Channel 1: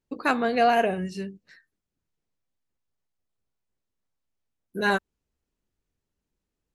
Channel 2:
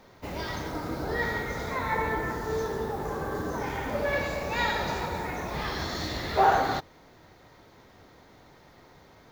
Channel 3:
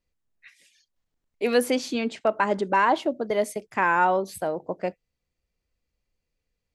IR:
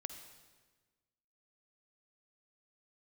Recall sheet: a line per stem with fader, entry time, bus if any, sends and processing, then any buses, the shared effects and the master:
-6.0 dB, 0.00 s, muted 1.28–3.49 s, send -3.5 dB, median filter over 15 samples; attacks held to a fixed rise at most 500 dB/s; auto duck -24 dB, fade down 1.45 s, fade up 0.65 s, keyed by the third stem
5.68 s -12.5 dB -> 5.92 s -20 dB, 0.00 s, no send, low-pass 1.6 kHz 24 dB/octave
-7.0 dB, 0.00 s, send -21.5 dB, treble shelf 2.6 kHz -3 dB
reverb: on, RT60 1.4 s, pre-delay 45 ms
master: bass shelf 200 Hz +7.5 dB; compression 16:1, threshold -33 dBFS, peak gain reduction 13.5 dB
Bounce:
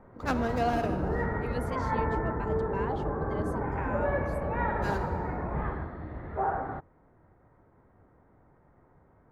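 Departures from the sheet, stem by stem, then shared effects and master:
stem 2 -12.5 dB -> -1.5 dB; stem 3 -7.0 dB -> -17.5 dB; master: missing compression 16:1, threshold -33 dBFS, peak gain reduction 13.5 dB

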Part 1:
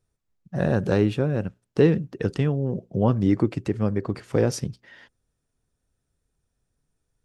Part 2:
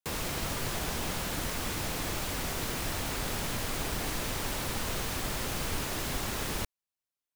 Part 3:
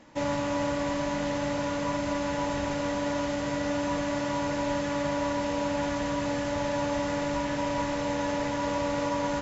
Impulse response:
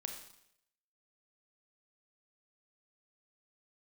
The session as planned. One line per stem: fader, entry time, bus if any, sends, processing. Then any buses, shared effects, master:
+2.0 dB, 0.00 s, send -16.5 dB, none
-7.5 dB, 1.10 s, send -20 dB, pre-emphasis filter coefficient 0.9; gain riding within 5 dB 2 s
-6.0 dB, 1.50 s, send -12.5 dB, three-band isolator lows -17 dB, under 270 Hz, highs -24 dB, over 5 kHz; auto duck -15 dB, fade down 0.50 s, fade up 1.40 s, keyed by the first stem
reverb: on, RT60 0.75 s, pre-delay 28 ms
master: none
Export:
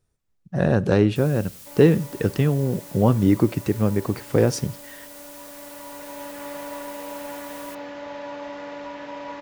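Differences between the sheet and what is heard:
nothing

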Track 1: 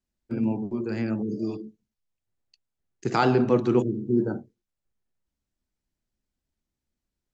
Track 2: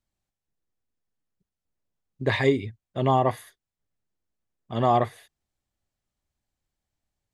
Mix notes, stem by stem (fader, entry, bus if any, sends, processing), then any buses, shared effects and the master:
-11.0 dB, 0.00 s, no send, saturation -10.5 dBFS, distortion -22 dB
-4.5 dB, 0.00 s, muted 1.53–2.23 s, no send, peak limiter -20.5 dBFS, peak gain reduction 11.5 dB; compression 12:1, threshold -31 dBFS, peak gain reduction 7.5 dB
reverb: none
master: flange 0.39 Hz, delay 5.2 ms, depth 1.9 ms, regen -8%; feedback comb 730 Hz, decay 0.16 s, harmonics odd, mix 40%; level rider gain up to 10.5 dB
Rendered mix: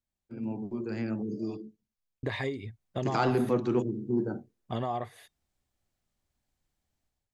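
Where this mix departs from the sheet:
stem 2: missing peak limiter -20.5 dBFS, peak gain reduction 11.5 dB; master: missing flange 0.39 Hz, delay 5.2 ms, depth 1.9 ms, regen -8%

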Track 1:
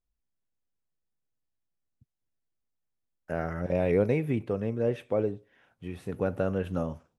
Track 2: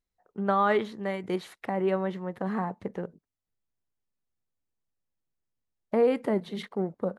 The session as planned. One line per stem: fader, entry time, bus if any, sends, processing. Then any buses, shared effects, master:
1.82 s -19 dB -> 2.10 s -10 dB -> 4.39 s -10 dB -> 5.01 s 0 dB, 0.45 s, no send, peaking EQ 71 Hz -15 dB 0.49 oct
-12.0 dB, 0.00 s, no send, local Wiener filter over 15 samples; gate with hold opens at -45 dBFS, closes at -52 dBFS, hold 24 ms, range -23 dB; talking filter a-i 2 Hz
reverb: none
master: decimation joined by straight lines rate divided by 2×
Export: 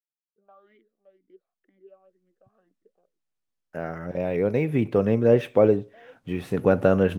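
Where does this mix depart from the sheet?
stem 1 -19.0 dB -> -9.0 dB; stem 2 -12.0 dB -> -19.5 dB

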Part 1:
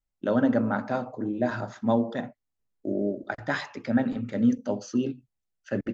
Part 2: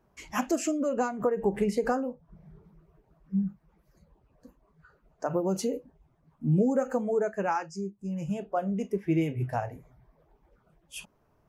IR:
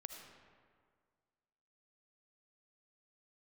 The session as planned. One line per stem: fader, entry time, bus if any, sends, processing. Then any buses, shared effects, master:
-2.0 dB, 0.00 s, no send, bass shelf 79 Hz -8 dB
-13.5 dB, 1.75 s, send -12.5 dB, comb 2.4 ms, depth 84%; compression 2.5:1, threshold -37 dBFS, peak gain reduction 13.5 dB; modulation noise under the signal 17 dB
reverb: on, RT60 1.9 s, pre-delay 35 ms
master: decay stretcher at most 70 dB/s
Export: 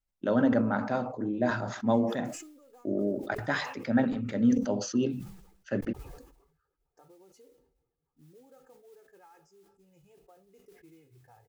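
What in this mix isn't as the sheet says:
stem 1: missing bass shelf 79 Hz -8 dB; stem 2 -13.5 dB -> -23.5 dB

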